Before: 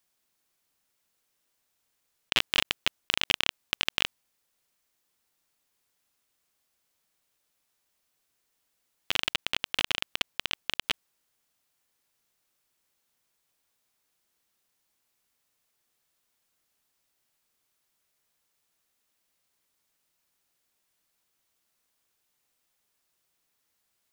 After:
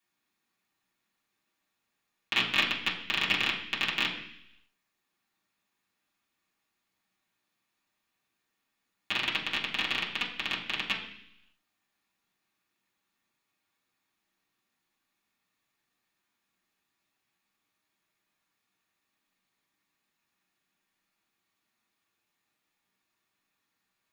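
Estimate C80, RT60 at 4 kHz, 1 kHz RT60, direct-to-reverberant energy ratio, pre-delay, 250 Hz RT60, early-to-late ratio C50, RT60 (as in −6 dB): 10.0 dB, 0.95 s, 0.70 s, −7.0 dB, 3 ms, 0.90 s, 7.5 dB, 0.70 s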